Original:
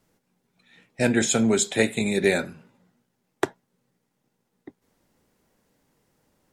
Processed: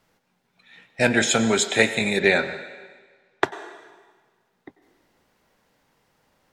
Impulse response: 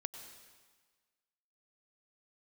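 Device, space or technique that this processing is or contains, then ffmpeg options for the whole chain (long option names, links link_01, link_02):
filtered reverb send: -filter_complex "[0:a]asplit=2[link_01][link_02];[link_02]highpass=540,lowpass=5400[link_03];[1:a]atrim=start_sample=2205[link_04];[link_03][link_04]afir=irnorm=-1:irlink=0,volume=4dB[link_05];[link_01][link_05]amix=inputs=2:normalize=0,asettb=1/sr,asplit=3[link_06][link_07][link_08];[link_06]atrim=end=2.194[link_09];[link_07]atrim=start=2.19:end=3.44,asetpts=PTS-STARTPTS,afade=type=in:duration=0.004:curve=qsin,afade=type=out:start_time=1.246:duration=0.004:curve=qsin,lowpass=5400[link_10];[link_08]atrim=start=3.436[link_11];[link_09][link_10]acrossfade=duration=0.004:curve1=hsin:curve2=qsin[link_12];[link_12][link_11]acrossfade=duration=0.004:curve1=qsin:curve2=hsin"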